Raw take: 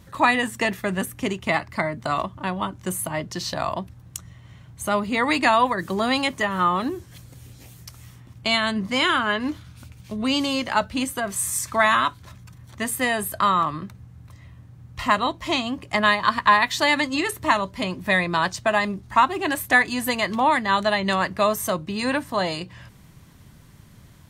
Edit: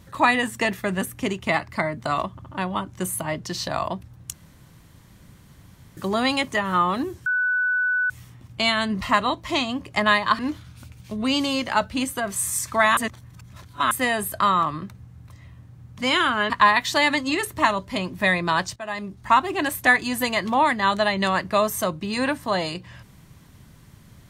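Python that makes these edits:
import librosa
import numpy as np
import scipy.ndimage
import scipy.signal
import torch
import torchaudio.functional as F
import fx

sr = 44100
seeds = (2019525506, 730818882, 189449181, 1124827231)

y = fx.edit(x, sr, fx.stutter(start_s=2.32, slice_s=0.07, count=3),
    fx.room_tone_fill(start_s=4.19, length_s=1.64),
    fx.bleep(start_s=7.12, length_s=0.84, hz=1490.0, db=-19.0),
    fx.swap(start_s=8.87, length_s=0.52, other_s=14.98, other_length_s=1.38),
    fx.reverse_span(start_s=11.97, length_s=0.94),
    fx.fade_in_from(start_s=18.62, length_s=0.59, floor_db=-18.5), tone=tone)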